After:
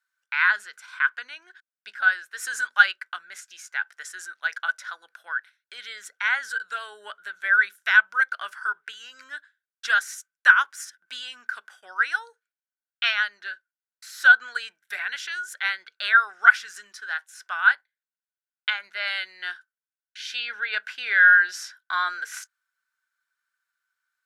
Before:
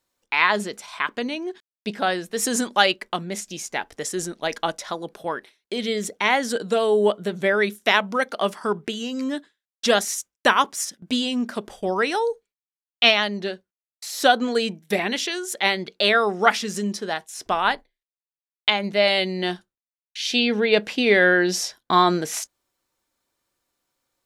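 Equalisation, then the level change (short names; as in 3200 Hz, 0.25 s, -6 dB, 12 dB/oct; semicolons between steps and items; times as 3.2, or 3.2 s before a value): resonant high-pass 1500 Hz, resonance Q 14; -10.5 dB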